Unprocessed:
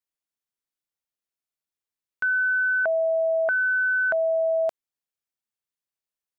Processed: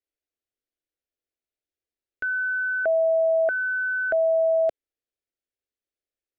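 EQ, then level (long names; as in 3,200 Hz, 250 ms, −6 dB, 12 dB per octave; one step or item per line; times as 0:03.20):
low-pass filter 1,100 Hz 6 dB per octave
phaser with its sweep stopped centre 410 Hz, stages 4
+7.5 dB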